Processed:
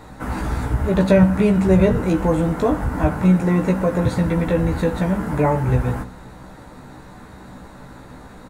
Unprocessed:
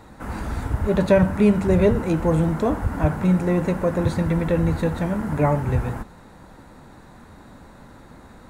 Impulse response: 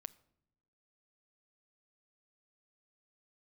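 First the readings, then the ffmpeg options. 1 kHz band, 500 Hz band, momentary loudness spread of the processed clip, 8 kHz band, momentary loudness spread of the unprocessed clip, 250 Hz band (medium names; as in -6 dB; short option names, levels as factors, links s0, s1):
+3.0 dB, +1.5 dB, 10 LU, +3.0 dB, 10 LU, +3.0 dB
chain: -filter_complex "[0:a]asplit=2[s0][s1];[s1]acompressor=threshold=0.0562:ratio=6,volume=0.75[s2];[s0][s2]amix=inputs=2:normalize=0,asplit=2[s3][s4];[s4]adelay=16,volume=0.596[s5];[s3][s5]amix=inputs=2:normalize=0[s6];[1:a]atrim=start_sample=2205[s7];[s6][s7]afir=irnorm=-1:irlink=0,volume=1.58"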